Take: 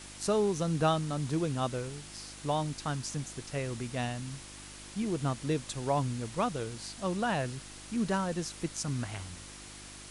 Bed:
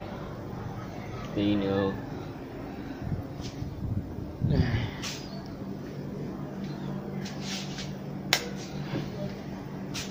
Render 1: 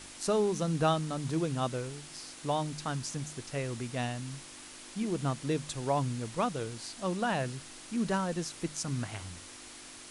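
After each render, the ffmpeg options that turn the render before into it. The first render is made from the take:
-af "bandreject=f=50:t=h:w=4,bandreject=f=100:t=h:w=4,bandreject=f=150:t=h:w=4,bandreject=f=200:t=h:w=4"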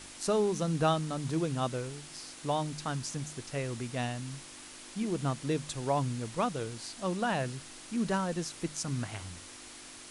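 -af anull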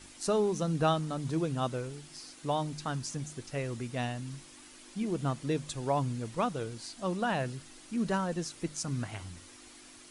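-af "afftdn=nr=7:nf=-49"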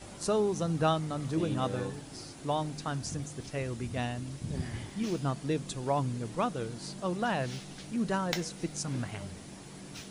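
-filter_complex "[1:a]volume=-10.5dB[a];[0:a][a]amix=inputs=2:normalize=0"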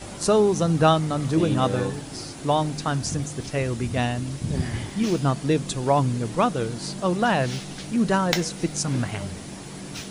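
-af "volume=9.5dB"

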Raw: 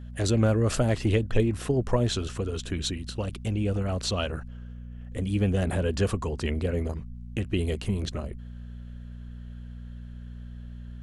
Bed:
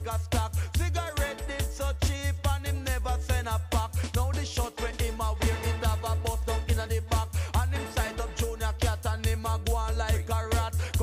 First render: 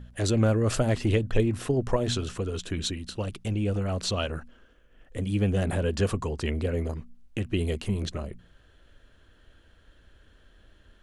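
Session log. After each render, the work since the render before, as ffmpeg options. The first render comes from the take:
-af "bandreject=f=60:t=h:w=4,bandreject=f=120:t=h:w=4,bandreject=f=180:t=h:w=4,bandreject=f=240:t=h:w=4"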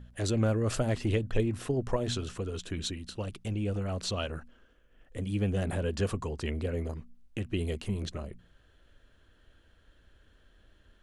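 -af "volume=-4.5dB"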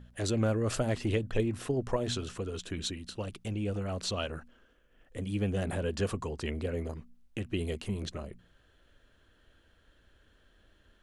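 -af "lowshelf=f=120:g=-4.5"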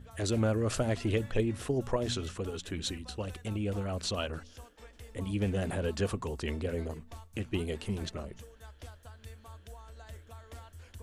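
-filter_complex "[1:a]volume=-21dB[a];[0:a][a]amix=inputs=2:normalize=0"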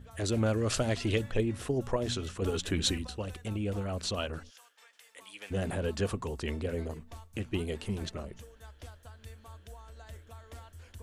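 -filter_complex "[0:a]asettb=1/sr,asplit=3[a][b][c];[a]atrim=end=0.464[d];[b]atrim=start=0.46:end=1.22,asetpts=PTS-STARTPTS,afade=t=in:d=0.004:c=qsin,afade=t=out:st=0.756:d=0.004:c=qsin,equalizer=f=4.4k:w=0.65:g=6.5[e];[c]atrim=start=1.216[f];[d][e]acrossfade=d=0.004:c1=hsin:c2=qsin[g];[g][f]acrossfade=d=0.004:c1=qsin:c2=hsin,asplit=3[h][i][j];[h]afade=t=out:st=4.49:d=0.02[k];[i]highpass=1.2k,afade=t=in:st=4.49:d=0.02,afade=t=out:st=5.5:d=0.02[l];[j]afade=t=in:st=5.5:d=0.02[m];[k][l][m]amix=inputs=3:normalize=0,asplit=3[n][o][p];[n]atrim=end=2.422[q];[o]atrim=start=2.418:end=3.072,asetpts=PTS-STARTPTS,volume=6.5dB[r];[p]atrim=start=3.068[s];[q][r]acrossfade=d=0.004:c1=hsin:c2=hsin[t];[t][s]acrossfade=d=0.004:c1=hsin:c2=hsin"

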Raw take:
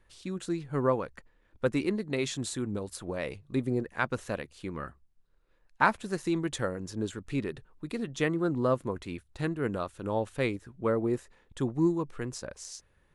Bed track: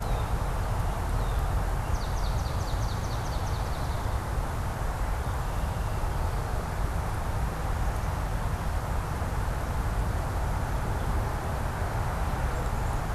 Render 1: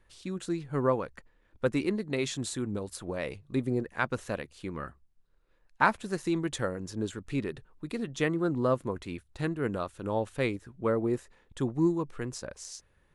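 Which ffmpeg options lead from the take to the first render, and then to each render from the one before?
-af anull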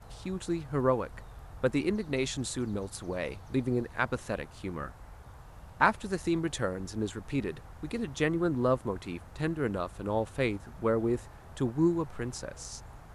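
-filter_complex "[1:a]volume=-19.5dB[a];[0:a][a]amix=inputs=2:normalize=0"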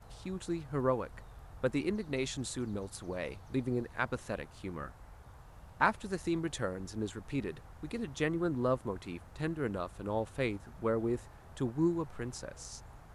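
-af "volume=-4dB"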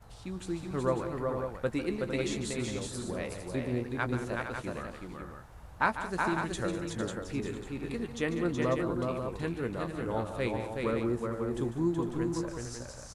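-filter_complex "[0:a]asplit=2[a][b];[b]adelay=17,volume=-11dB[c];[a][c]amix=inputs=2:normalize=0,aecho=1:1:147|199|373|454|547:0.266|0.178|0.631|0.335|0.422"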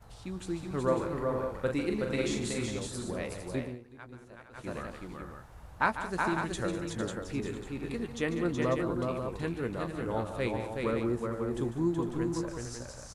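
-filter_complex "[0:a]asettb=1/sr,asplit=3[a][b][c];[a]atrim=end=0.844[d];[b]atrim=start=0.84:end=2.66,asetpts=PTS-STARTPTS,afade=t=in:d=0.004:c=qsin,afade=t=out:st=1.816:d=0.004:c=qsin,asplit=2[e][f];[f]adelay=42,volume=-5dB[g];[e][g]amix=inputs=2:normalize=0,atrim=end_sample=80262[h];[c]atrim=start=2.656[i];[d][h]acrossfade=d=0.004:c1=hsin:c2=qsin[j];[j][i]acrossfade=d=0.004:c1=qsin:c2=hsin,asplit=3[k][l][m];[k]atrim=end=3.78,asetpts=PTS-STARTPTS,afade=t=out:st=3.58:d=0.2:silence=0.149624[n];[l]atrim=start=3.78:end=4.52,asetpts=PTS-STARTPTS,volume=-16.5dB[o];[m]atrim=start=4.52,asetpts=PTS-STARTPTS,afade=t=in:d=0.2:silence=0.149624[p];[n][o][p]concat=n=3:v=0:a=1"

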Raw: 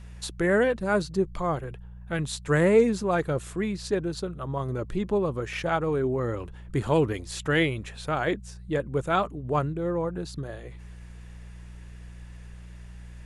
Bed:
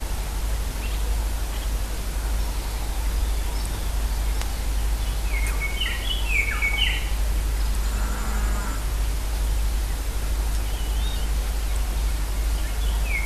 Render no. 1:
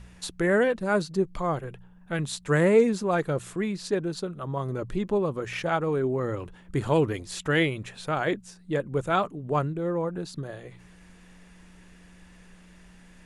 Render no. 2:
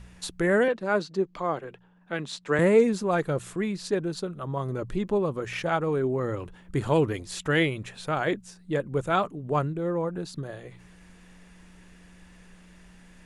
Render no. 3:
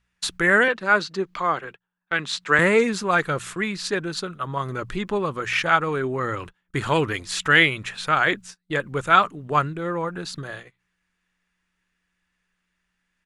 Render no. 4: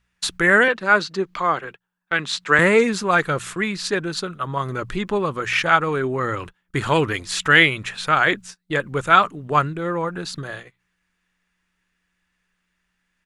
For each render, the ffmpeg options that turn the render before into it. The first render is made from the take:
-af "bandreject=f=60:t=h:w=4,bandreject=f=120:t=h:w=4"
-filter_complex "[0:a]asettb=1/sr,asplit=3[a][b][c];[a]atrim=end=0.684[d];[b]atrim=start=0.68:end=2.59,asetpts=PTS-STARTPTS,afade=t=in:d=0.004:c=qsin,afade=t=out:st=1.906:d=0.004:c=qsin,acrossover=split=190 6500:gain=0.126 1 0.141[e][f][g];[e][f][g]amix=inputs=3:normalize=0[h];[c]atrim=start=2.586[i];[d][h]acrossfade=d=0.004:c1=hsin:c2=qsin[j];[j][i]acrossfade=d=0.004:c1=qsin:c2=hsin"
-af "firequalizer=gain_entry='entry(580,0);entry(1300,12);entry(10000,5)':delay=0.05:min_phase=1,agate=range=-28dB:threshold=-37dB:ratio=16:detection=peak"
-af "volume=2.5dB,alimiter=limit=-1dB:level=0:latency=1"

